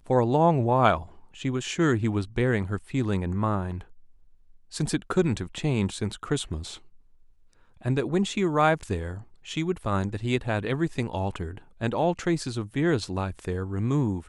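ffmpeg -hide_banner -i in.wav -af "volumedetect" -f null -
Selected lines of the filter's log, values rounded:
mean_volume: -26.8 dB
max_volume: -6.5 dB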